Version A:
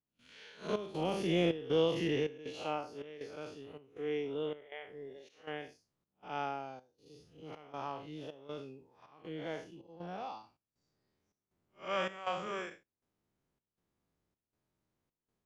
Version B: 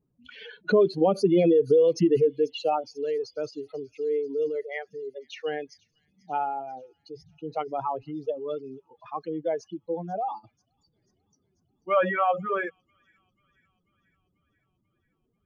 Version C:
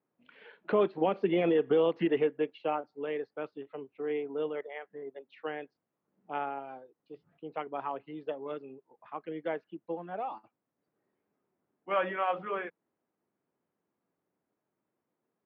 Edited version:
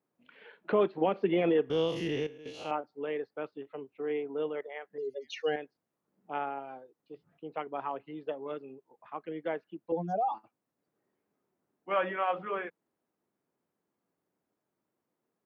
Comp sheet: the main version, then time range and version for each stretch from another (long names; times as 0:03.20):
C
0:01.70–0:02.71: punch in from A
0:04.98–0:05.56: punch in from B
0:09.92–0:10.34: punch in from B